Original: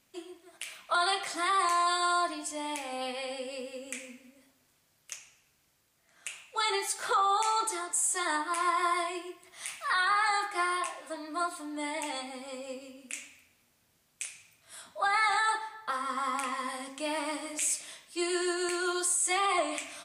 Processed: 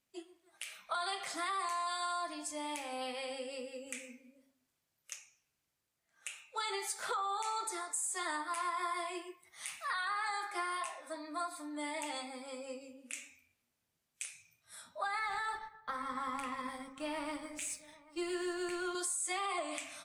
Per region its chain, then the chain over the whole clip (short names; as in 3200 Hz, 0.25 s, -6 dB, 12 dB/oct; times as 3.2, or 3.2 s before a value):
15.19–18.95 G.711 law mismatch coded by A + tone controls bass +9 dB, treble -6 dB + echo 0.788 s -21 dB
whole clip: spectral noise reduction 10 dB; compressor 4:1, threshold -30 dBFS; gain -4 dB